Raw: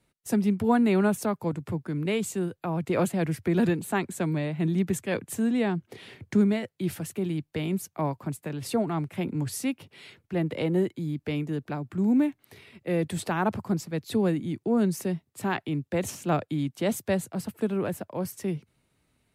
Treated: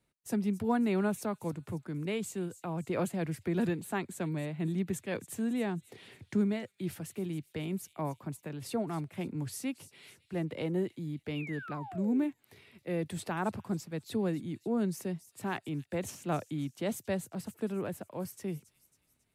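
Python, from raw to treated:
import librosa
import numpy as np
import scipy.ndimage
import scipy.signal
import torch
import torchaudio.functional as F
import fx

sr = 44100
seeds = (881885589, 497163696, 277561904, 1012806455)

y = fx.spec_paint(x, sr, seeds[0], shape='fall', start_s=11.35, length_s=0.96, low_hz=280.0, high_hz=3000.0, level_db=-38.0)
y = fx.echo_wet_highpass(y, sr, ms=273, feedback_pct=48, hz=4400.0, wet_db=-12.0)
y = F.gain(torch.from_numpy(y), -7.0).numpy()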